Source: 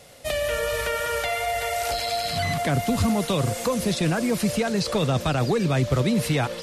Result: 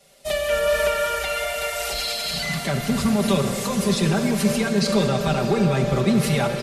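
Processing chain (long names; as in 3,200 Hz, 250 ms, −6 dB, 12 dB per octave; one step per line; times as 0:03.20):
comb filter 5.1 ms, depth 96%
in parallel at −2 dB: brickwall limiter −19.5 dBFS, peak gain reduction 11.5 dB
on the sum: comb and all-pass reverb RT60 5 s, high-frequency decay 0.8×, pre-delay 5 ms, DRR 4 dB
multiband upward and downward expander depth 40%
level −4.5 dB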